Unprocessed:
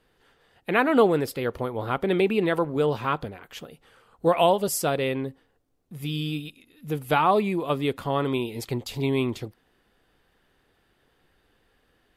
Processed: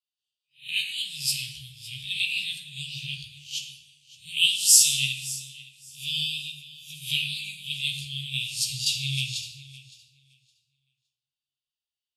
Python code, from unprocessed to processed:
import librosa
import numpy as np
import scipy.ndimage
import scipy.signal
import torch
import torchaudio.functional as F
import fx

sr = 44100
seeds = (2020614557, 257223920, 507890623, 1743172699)

p1 = fx.spec_swells(x, sr, rise_s=0.39)
p2 = fx.weighting(p1, sr, curve='ITU-R 468')
p3 = fx.noise_reduce_blind(p2, sr, reduce_db=14)
p4 = scipy.signal.sosfilt(scipy.signal.cheby1(5, 1.0, [150.0, 2700.0], 'bandstop', fs=sr, output='sos'), p3)
p5 = fx.low_shelf(p4, sr, hz=190.0, db=9.0)
p6 = fx.doubler(p5, sr, ms=15.0, db=-5)
p7 = p6 + fx.echo_feedback(p6, sr, ms=564, feedback_pct=30, wet_db=-14, dry=0)
p8 = fx.rev_plate(p7, sr, seeds[0], rt60_s=1.6, hf_ratio=0.5, predelay_ms=0, drr_db=2.5)
p9 = fx.band_widen(p8, sr, depth_pct=40)
y = F.gain(torch.from_numpy(p9), -2.0).numpy()